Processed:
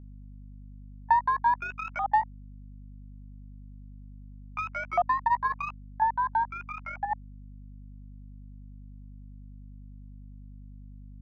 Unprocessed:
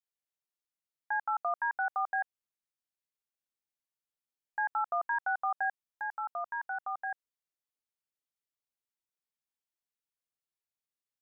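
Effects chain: repeated pitch sweeps +11 st, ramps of 0.995 s; overdrive pedal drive 8 dB, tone 1100 Hz, clips at -23.5 dBFS; transient shaper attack +6 dB, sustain -11 dB; band shelf 770 Hz +13 dB 1 oct; hum 50 Hz, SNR 13 dB; gain -1 dB

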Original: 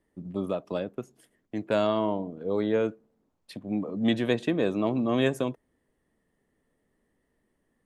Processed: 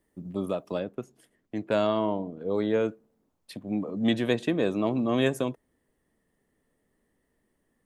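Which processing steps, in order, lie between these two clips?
high shelf 7900 Hz +10.5 dB, from 0.75 s -2 dB, from 2.54 s +5.5 dB

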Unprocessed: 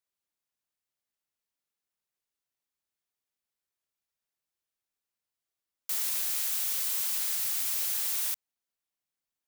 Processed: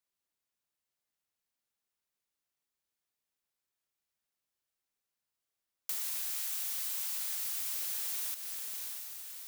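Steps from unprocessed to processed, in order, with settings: on a send: diffused feedback echo 0.632 s, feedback 53%, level -11 dB; on the sum: compressor, threshold -33 dBFS, peak gain reduction 6.5 dB; 5.99–7.74 steep high-pass 570 Hz 72 dB/oct

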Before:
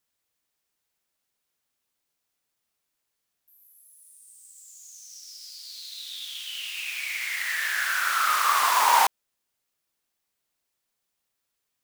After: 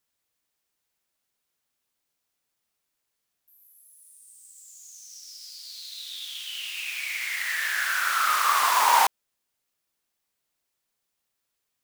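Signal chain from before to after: 4.64–6.75 bell 120 Hz +8.5 dB 2.4 oct

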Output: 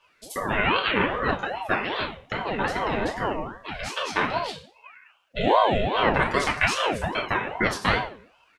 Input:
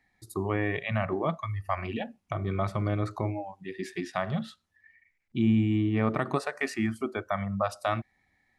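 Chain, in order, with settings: harmoniser -5 st -9 dB; LPF 2700 Hz 6 dB/oct; tilt shelf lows -9.5 dB, about 1300 Hz; FDN reverb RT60 0.44 s, low-frequency decay 1.3×, high-frequency decay 0.95×, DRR -3 dB; ring modulator with a swept carrier 580 Hz, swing 50%, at 2.5 Hz; gain +7.5 dB

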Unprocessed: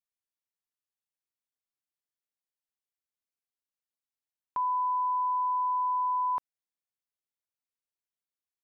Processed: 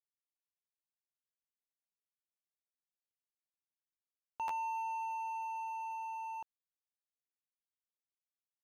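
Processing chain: median filter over 25 samples; Doppler pass-by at 2.71, 41 m/s, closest 27 m; stuck buffer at 4.47, samples 512, times 2; gain +2.5 dB

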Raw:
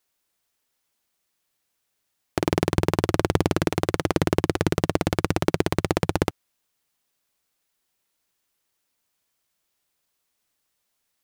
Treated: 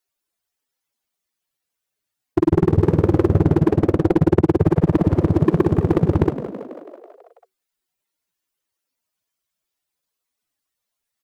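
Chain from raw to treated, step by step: spectral contrast raised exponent 2.3; sample leveller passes 3; frequency-shifting echo 0.164 s, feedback 63%, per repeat +54 Hz, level -12 dB

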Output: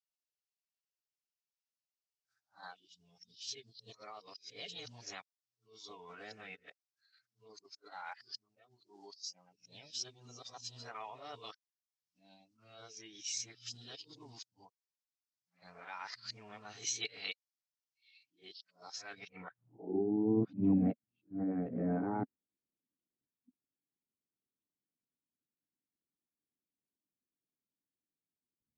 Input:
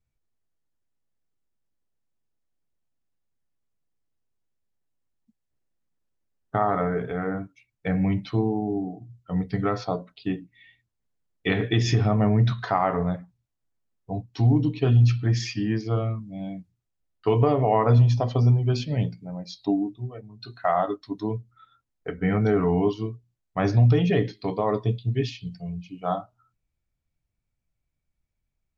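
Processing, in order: whole clip reversed; band-pass sweep 4400 Hz -> 220 Hz, 19.1–20.04; formant shift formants +3 st; gain -1.5 dB

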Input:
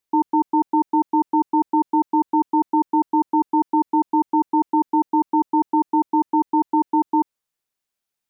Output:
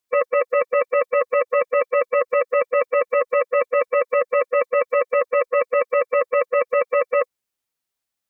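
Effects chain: ring modulator 1400 Hz; formant-preserving pitch shift +2.5 st; gain +4.5 dB

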